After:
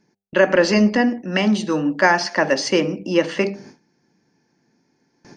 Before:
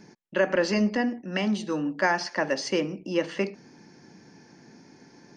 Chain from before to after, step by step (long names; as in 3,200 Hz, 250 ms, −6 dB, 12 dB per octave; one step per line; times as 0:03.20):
hum removal 99.12 Hz, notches 8
noise gate with hold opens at −39 dBFS
level +8.5 dB